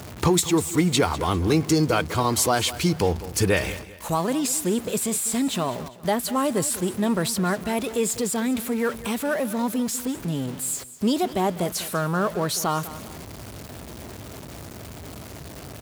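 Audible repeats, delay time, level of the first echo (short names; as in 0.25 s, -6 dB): 2, 0.199 s, -16.0 dB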